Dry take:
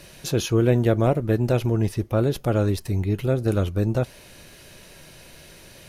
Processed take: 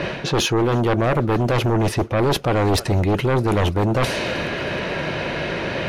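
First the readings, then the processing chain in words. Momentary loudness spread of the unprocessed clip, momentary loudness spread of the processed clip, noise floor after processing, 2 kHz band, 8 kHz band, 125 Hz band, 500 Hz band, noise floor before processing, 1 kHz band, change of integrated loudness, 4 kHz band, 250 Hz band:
6 LU, 6 LU, -29 dBFS, +12.5 dB, +5.5 dB, +1.5 dB, +3.5 dB, -47 dBFS, +11.0 dB, +2.5 dB, +11.0 dB, +3.0 dB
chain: level-controlled noise filter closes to 2.3 kHz, open at -19 dBFS; high-pass 210 Hz 6 dB/octave; in parallel at -2 dB: peak limiter -19 dBFS, peak gain reduction 10 dB; on the sum: thinning echo 316 ms, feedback 63%, high-pass 1.2 kHz, level -22.5 dB; reverse; compression 20:1, threshold -31 dBFS, peak gain reduction 19 dB; reverse; low-pass 3 kHz 6 dB/octave; sine folder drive 12 dB, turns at -20 dBFS; trim +6 dB

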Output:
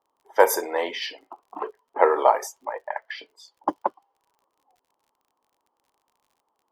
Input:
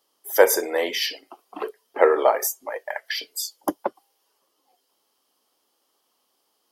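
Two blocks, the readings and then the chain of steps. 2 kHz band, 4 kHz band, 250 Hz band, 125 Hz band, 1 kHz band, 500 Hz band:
-3.0 dB, -7.0 dB, -3.5 dB, no reading, +3.5 dB, -2.5 dB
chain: level-controlled noise filter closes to 1.1 kHz, open at -15 dBFS; peaking EQ 940 Hz +11 dB 0.61 oct; crackle 43 per s -47 dBFS; trim -4 dB

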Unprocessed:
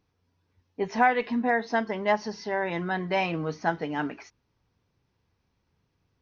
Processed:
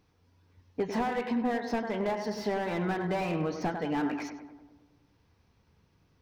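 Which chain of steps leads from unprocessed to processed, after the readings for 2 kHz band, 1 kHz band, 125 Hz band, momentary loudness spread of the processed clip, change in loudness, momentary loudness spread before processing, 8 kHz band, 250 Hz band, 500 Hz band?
-9.0 dB, -6.5 dB, 0.0 dB, 7 LU, -4.0 dB, 10 LU, no reading, 0.0 dB, -3.0 dB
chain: compression 10:1, threshold -32 dBFS, peak gain reduction 15.5 dB; filtered feedback delay 99 ms, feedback 63%, low-pass 1.8 kHz, level -8 dB; slew-rate limiter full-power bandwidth 18 Hz; trim +5.5 dB

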